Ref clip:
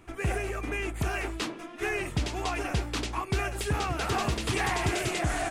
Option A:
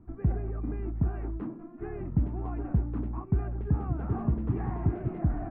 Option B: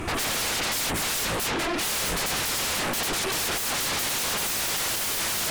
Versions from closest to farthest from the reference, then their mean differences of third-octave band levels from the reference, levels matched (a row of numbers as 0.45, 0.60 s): B, A; 10.0, 17.0 dB